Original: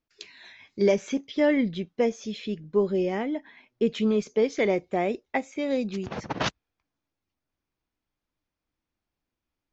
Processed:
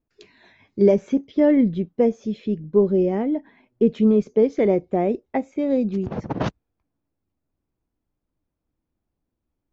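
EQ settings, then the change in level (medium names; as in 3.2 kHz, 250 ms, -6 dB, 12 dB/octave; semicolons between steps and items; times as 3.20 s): tilt shelf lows +9.5 dB, about 1.1 kHz; -1.0 dB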